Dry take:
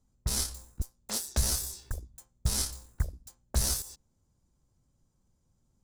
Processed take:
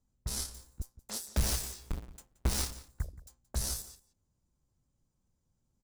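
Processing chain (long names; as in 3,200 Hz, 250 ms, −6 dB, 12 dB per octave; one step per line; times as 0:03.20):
0:01.36–0:02.73: each half-wave held at its own peak
slap from a distant wall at 30 metres, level −17 dB
level −6 dB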